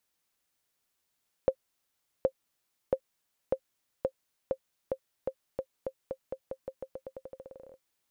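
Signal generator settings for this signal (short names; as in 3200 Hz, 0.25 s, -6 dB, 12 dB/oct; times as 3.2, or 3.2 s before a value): bouncing ball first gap 0.77 s, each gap 0.88, 529 Hz, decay 71 ms -13 dBFS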